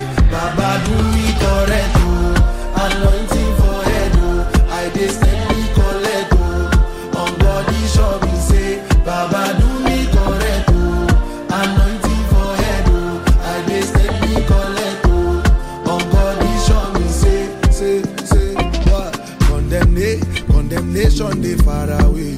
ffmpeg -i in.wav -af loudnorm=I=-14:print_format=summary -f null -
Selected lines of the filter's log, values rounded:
Input Integrated:    -16.0 LUFS
Input True Peak:      -3.4 dBTP
Input LRA:             0.8 LU
Input Threshold:     -26.0 LUFS